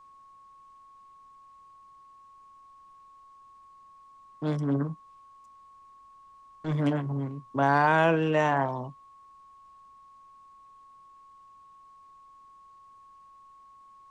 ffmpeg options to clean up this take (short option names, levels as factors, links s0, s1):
-af "bandreject=f=1100:w=30,agate=range=0.0891:threshold=0.00501"